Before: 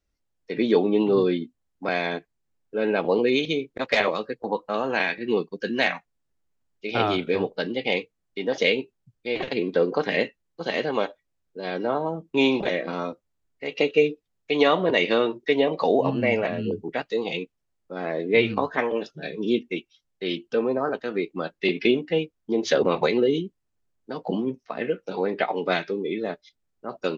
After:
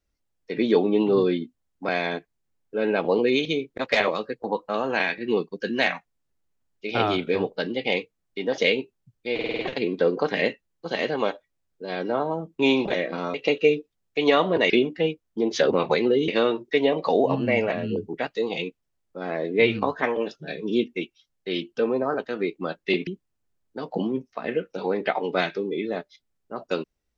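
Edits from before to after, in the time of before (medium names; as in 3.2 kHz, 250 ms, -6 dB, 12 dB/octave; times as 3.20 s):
9.34 s: stutter 0.05 s, 6 plays
13.09–13.67 s: delete
21.82–23.40 s: move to 15.03 s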